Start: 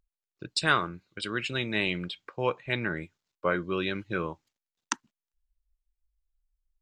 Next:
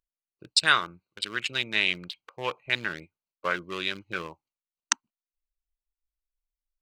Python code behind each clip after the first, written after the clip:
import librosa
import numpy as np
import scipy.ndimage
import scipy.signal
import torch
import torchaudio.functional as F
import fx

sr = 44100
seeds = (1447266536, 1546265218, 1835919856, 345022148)

y = fx.wiener(x, sr, points=25)
y = fx.noise_reduce_blind(y, sr, reduce_db=6)
y = fx.tilt_shelf(y, sr, db=-9.0, hz=970.0)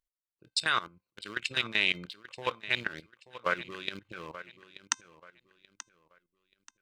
y = fx.comb_fb(x, sr, f0_hz=520.0, decay_s=0.26, harmonics='all', damping=0.0, mix_pct=40)
y = fx.level_steps(y, sr, step_db=16)
y = fx.echo_feedback(y, sr, ms=882, feedback_pct=30, wet_db=-15)
y = y * 10.0 ** (5.5 / 20.0)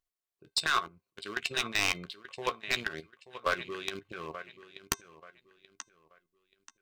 y = np.minimum(x, 2.0 * 10.0 ** (-19.0 / 20.0) - x)
y = fx.doubler(y, sr, ms=13.0, db=-12.0)
y = fx.small_body(y, sr, hz=(400.0, 700.0, 1100.0), ring_ms=85, db=9)